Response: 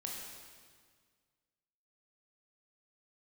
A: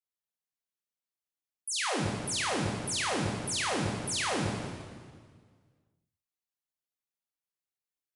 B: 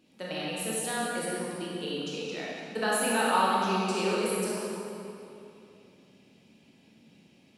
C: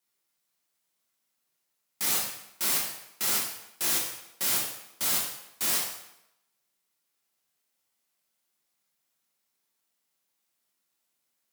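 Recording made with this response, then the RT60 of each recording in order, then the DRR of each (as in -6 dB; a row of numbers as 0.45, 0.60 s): A; 1.7, 2.8, 0.85 s; -2.0, -6.5, -3.5 dB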